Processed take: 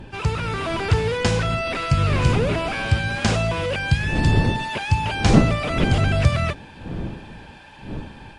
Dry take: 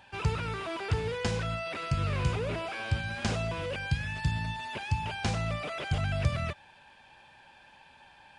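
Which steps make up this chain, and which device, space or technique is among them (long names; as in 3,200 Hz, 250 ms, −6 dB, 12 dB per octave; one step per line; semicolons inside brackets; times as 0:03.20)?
smartphone video outdoors (wind on the microphone 230 Hz −37 dBFS; automatic gain control gain up to 4.5 dB; level +6 dB; AAC 64 kbit/s 32,000 Hz)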